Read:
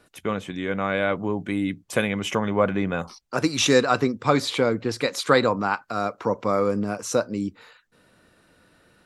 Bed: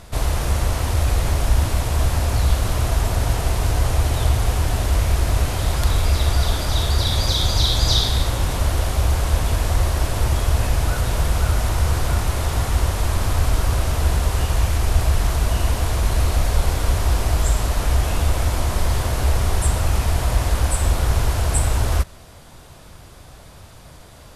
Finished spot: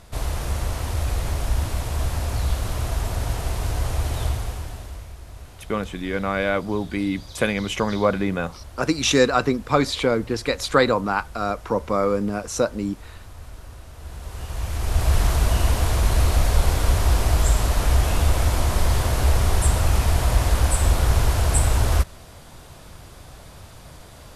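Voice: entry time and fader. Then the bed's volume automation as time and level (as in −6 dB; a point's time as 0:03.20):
5.45 s, +1.0 dB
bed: 0:04.25 −5.5 dB
0:05.16 −21.5 dB
0:13.92 −21.5 dB
0:15.15 0 dB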